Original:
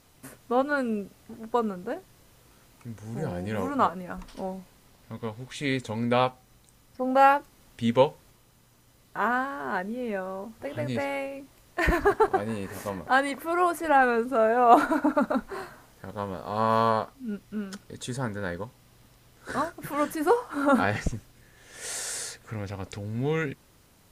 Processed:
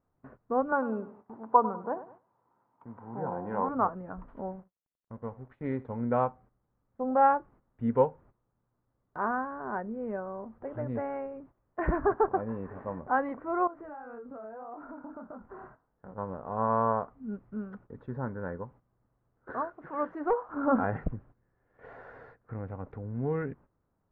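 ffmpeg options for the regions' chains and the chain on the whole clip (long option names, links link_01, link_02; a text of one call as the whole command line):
ffmpeg -i in.wav -filter_complex "[0:a]asettb=1/sr,asplit=3[link_01][link_02][link_03];[link_01]atrim=end=0.724[link_04];[link_02]atrim=start=0.72:end=3.69,asetpts=PTS-STARTPTS,afade=type=in:duration=0.004:curve=qsin,afade=type=out:start_time=2.966:duration=0.004:curve=qsin,highpass=170,equalizer=frequency=930:width_type=o:width=0.63:gain=14,aecho=1:1:99|198|297:0.188|0.0697|0.0258,atrim=end_sample=130977[link_05];[link_03]atrim=start=3.686[link_06];[link_04][link_05]acrossfade=duration=0.004:curve1=hsin:curve2=qsin[link_07];[link_07][link_06]acrossfade=duration=0.004:curve1=qsin:curve2=hsin,asettb=1/sr,asplit=3[link_08][link_09][link_10];[link_08]atrim=end=4.514[link_11];[link_09]atrim=start=4.51:end=6.01,asetpts=PTS-STARTPTS,afade=type=in:duration=0.004:curve=qsin,afade=type=out:start_time=1.496:duration=0.004:curve=qsin,aeval=exprs='sgn(val(0))*max(abs(val(0))-0.00316,0)':channel_layout=same,aecho=1:1:79:0.1,atrim=end_sample=66150[link_12];[link_10]atrim=start=6.006[link_13];[link_11][link_12]acrossfade=duration=0.004:curve1=hsin:curve2=qsin[link_14];[link_14][link_13]acrossfade=duration=0.004:curve1=qsin:curve2=hsin,asettb=1/sr,asplit=3[link_15][link_16][link_17];[link_15]atrim=end=13.674[link_18];[link_16]atrim=start=13.67:end=16.18,asetpts=PTS-STARTPTS,afade=type=in:duration=0.004:curve=qsin,afade=type=out:start_time=2.506:duration=0.004:curve=qsin,flanger=delay=20:depth=7.6:speed=1.8,acompressor=threshold=-36dB:ratio=12:attack=3.2:release=140:knee=1:detection=peak[link_19];[link_17]atrim=start=16.176[link_20];[link_18][link_19]acrossfade=duration=0.004:curve1=hsin:curve2=qsin[link_21];[link_21][link_20]acrossfade=duration=0.004:curve1=qsin:curve2=hsin,asettb=1/sr,asplit=3[link_22][link_23][link_24];[link_22]atrim=end=19.504[link_25];[link_23]atrim=start=19.5:end=20.49,asetpts=PTS-STARTPTS,afade=type=in:duration=0.004:curve=qsin,afade=type=out:start_time=0.986:duration=0.004:curve=qsin,bass=frequency=250:gain=-12,treble=frequency=4000:gain=12,asoftclip=type=hard:threshold=-15.5dB[link_26];[link_24]atrim=start=20.486[link_27];[link_25][link_26]acrossfade=duration=0.004:curve1=hsin:curve2=qsin[link_28];[link_28][link_27]acrossfade=duration=0.004:curve1=qsin:curve2=hsin,lowpass=frequency=1400:width=0.5412,lowpass=frequency=1400:width=1.3066,agate=range=-13dB:threshold=-49dB:ratio=16:detection=peak,volume=-3.5dB" out.wav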